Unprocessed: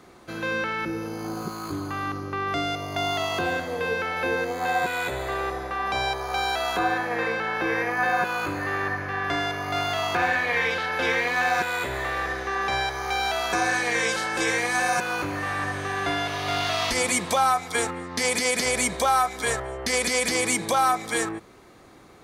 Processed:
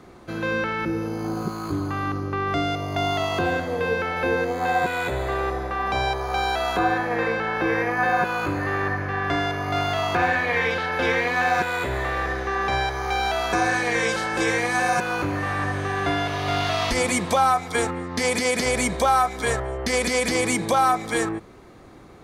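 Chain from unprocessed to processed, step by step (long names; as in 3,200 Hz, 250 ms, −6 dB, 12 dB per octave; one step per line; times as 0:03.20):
spectral tilt −1.5 dB per octave
0:05.33–0:05.96: surface crackle 60 per second −48 dBFS
level +2 dB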